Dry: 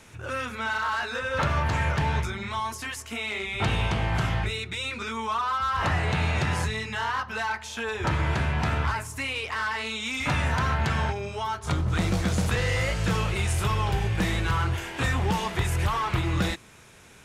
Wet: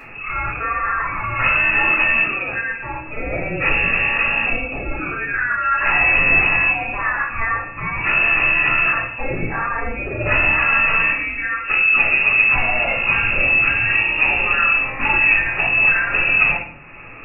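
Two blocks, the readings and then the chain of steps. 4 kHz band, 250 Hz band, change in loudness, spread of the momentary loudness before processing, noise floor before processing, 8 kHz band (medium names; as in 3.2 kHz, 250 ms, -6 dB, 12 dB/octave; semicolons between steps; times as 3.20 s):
+3.0 dB, 0.0 dB, +11.5 dB, 6 LU, -45 dBFS, under -40 dB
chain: frequency inversion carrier 2.7 kHz; upward compressor, threshold -38 dBFS; simulated room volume 75 m³, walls mixed, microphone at 2.2 m; trim -2 dB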